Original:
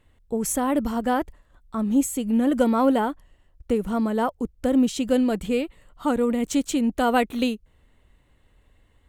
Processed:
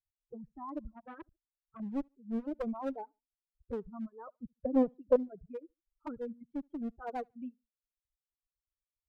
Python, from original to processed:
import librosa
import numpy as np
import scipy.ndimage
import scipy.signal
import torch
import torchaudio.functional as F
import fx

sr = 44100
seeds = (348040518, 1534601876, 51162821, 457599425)

y = fx.bin_expand(x, sr, power=2.0)
y = fx.env_flanger(y, sr, rest_ms=2.5, full_db=-20.5)
y = scipy.signal.sosfilt(scipy.signal.butter(4, 1200.0, 'lowpass', fs=sr, output='sos'), y)
y = fx.clip_asym(y, sr, top_db=-27.0, bottom_db=-16.5)
y = fx.dereverb_blind(y, sr, rt60_s=0.97)
y = fx.peak_eq(y, sr, hz=510.0, db=14.0, octaves=1.9, at=(4.27, 5.16))
y = fx.echo_feedback(y, sr, ms=72, feedback_pct=26, wet_db=-21.5)
y = fx.dereverb_blind(y, sr, rt60_s=0.84)
y = fx.transformer_sat(y, sr, knee_hz=950.0, at=(0.92, 1.8))
y = F.gain(torch.from_numpy(y), -8.5).numpy()